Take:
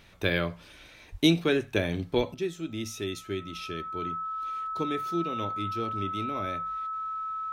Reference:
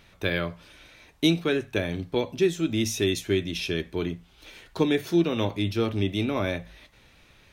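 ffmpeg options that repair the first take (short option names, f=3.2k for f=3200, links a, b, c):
-filter_complex "[0:a]bandreject=f=1.3k:w=30,asplit=3[a][b][c];[a]afade=t=out:st=1.11:d=0.02[d];[b]highpass=f=140:w=0.5412,highpass=f=140:w=1.3066,afade=t=in:st=1.11:d=0.02,afade=t=out:st=1.23:d=0.02[e];[c]afade=t=in:st=1.23:d=0.02[f];[d][e][f]amix=inputs=3:normalize=0,asplit=3[g][h][i];[g]afade=t=out:st=2.16:d=0.02[j];[h]highpass=f=140:w=0.5412,highpass=f=140:w=1.3066,afade=t=in:st=2.16:d=0.02,afade=t=out:st=2.28:d=0.02[k];[i]afade=t=in:st=2.28:d=0.02[l];[j][k][l]amix=inputs=3:normalize=0,asetnsamples=n=441:p=0,asendcmd='2.34 volume volume 9dB',volume=0dB"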